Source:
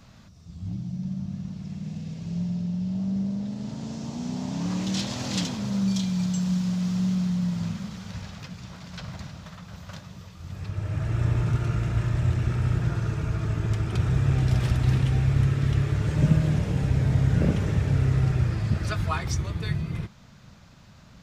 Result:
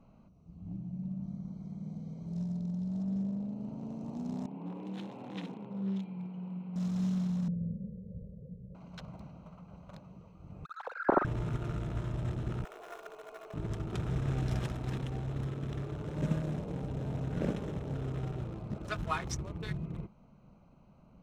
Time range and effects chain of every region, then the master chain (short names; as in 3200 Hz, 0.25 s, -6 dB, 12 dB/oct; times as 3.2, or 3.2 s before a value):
1.23–3.03 Butterworth band-stop 2700 Hz, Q 3.9 + high shelf 3100 Hz +9.5 dB
4.46–6.76 speaker cabinet 230–2800 Hz, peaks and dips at 240 Hz -8 dB, 620 Hz -10 dB, 1200 Hz -7 dB, 1700 Hz -5 dB + flutter echo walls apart 9.7 m, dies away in 0.51 s + Doppler distortion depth 0.13 ms
7.48–8.75 elliptic low-pass 510 Hz + comb 1.7 ms, depth 90%
10.65–11.25 sine-wave speech + steep low-pass 1600 Hz + flutter echo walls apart 7.7 m, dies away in 0.24 s
12.64–13.54 steep high-pass 440 Hz 48 dB/oct + comb 2.8 ms, depth 60% + sample gate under -43 dBFS
14.66–18.93 low shelf 190 Hz -6.5 dB + mismatched tape noise reduction decoder only
whole clip: Wiener smoothing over 25 samples; bell 91 Hz -12.5 dB 1.1 oct; notch 4600 Hz, Q 8.3; gain -3.5 dB